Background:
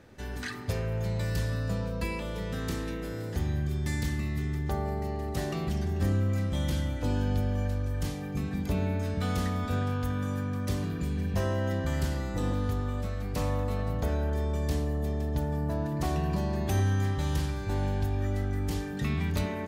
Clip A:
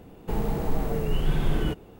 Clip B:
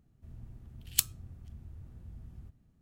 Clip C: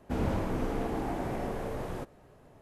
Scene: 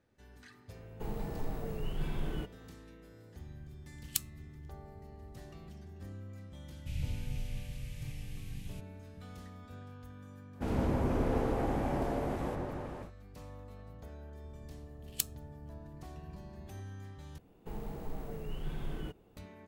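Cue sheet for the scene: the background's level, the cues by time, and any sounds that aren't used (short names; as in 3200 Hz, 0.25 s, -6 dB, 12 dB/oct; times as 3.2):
background -19.5 dB
0.72 add A -11.5 dB
3.17 add B -6.5 dB
6.76 add C -1.5 dB + elliptic band-stop 140–2500 Hz
10.51 add C -3.5 dB, fades 0.10 s + repeats that get brighter 0.159 s, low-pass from 750 Hz, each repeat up 1 oct, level 0 dB
14.21 add B -6.5 dB
17.38 replace with A -14.5 dB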